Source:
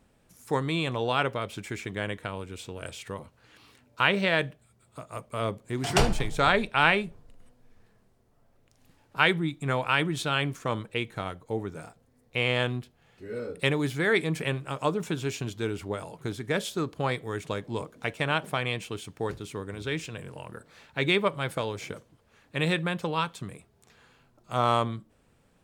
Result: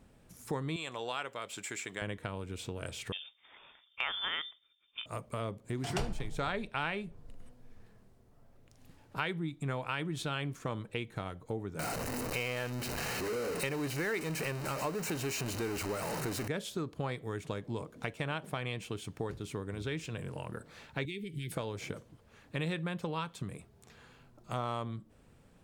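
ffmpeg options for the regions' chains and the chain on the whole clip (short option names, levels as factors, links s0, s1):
-filter_complex "[0:a]asettb=1/sr,asplit=3[s0][s1][s2];[s0]atrim=end=0.764[s3];[s1]atrim=start=0.76:end=2.02,asetpts=PTS-STARTPTS,afade=t=in:d=0.004:c=qsin,afade=t=out:st=1.256:d=0.004:c=qsin,highpass=f=970:p=1,equalizer=f=7500:w=6.4:g=12.5[s4];[s2]atrim=start=2.016[s5];[s3][s4]acrossfade=d=0.004:c1=hsin:c2=qsin[s6];[s6][s5]acrossfade=d=0.004:c1=qsin:c2=hsin,asettb=1/sr,asplit=3[s7][s8][s9];[s7]atrim=end=3.124[s10];[s8]atrim=start=3.12:end=5.06,asetpts=PTS-STARTPTS,afade=t=in:d=0.004:c=qsin,afade=t=out:st=1.936:d=0.004:c=qsin,agate=range=0.0224:threshold=0.00141:ratio=3:release=100:detection=peak,lowpass=f=3100:t=q:w=0.5098,lowpass=f=3100:t=q:w=0.6013,lowpass=f=3100:t=q:w=0.9,lowpass=f=3100:t=q:w=2.563,afreqshift=-3700[s11];[s9]atrim=start=5.056[s12];[s10][s11]acrossfade=d=0.004:c1=hsin:c2=qsin[s13];[s13][s12]acrossfade=d=0.004:c1=qsin:c2=hsin,asettb=1/sr,asplit=3[s14][s15][s16];[s14]atrim=end=11.794[s17];[s15]atrim=start=11.79:end=16.48,asetpts=PTS-STARTPTS,afade=t=in:d=0.004:c=qsin,afade=t=out:st=4.686:d=0.004:c=qsin,aeval=exprs='val(0)+0.5*0.0562*sgn(val(0))':c=same,asuperstop=centerf=3400:order=4:qfactor=6.5,lowshelf=f=210:g=-10.5[s18];[s16]atrim=start=16.476[s19];[s17][s18]acrossfade=d=0.004:c1=hsin:c2=qsin[s20];[s20][s19]acrossfade=d=0.004:c1=qsin:c2=hsin,asettb=1/sr,asplit=3[s21][s22][s23];[s21]atrim=end=21.054[s24];[s22]atrim=start=21.05:end=21.52,asetpts=PTS-STARTPTS,afade=t=in:d=0.004:c=qsin,afade=t=out:st=0.466:d=0.004:c=qsin,equalizer=f=14000:w=0.52:g=7,acompressor=threshold=0.02:ratio=2.5:attack=3.2:release=140:knee=1:detection=peak,asuperstop=centerf=890:order=12:qfactor=0.55[s25];[s23]atrim=start=21.516[s26];[s24][s25]acrossfade=d=0.004:c1=hsin:c2=qsin[s27];[s27][s26]acrossfade=d=0.004:c1=qsin:c2=hsin,lowshelf=f=370:g=4.5,acompressor=threshold=0.0158:ratio=3"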